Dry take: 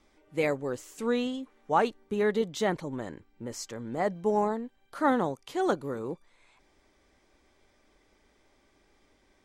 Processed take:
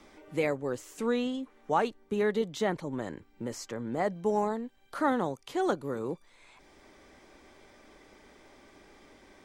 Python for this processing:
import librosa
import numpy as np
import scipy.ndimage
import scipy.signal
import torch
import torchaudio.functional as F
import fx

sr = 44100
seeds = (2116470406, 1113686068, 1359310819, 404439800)

y = fx.band_squash(x, sr, depth_pct=40)
y = F.gain(torch.from_numpy(y), -1.0).numpy()